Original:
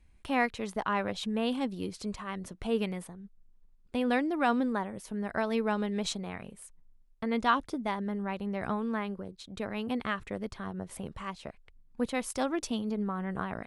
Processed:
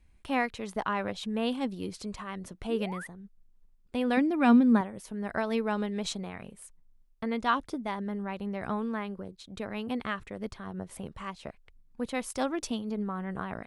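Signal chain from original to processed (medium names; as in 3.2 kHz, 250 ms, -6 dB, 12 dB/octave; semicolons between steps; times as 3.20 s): 2.69–3.07 s: painted sound rise 270–2100 Hz -41 dBFS; 4.17–4.81 s: small resonant body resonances 230/2400 Hz, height 12 dB; random flutter of the level, depth 50%; trim +2 dB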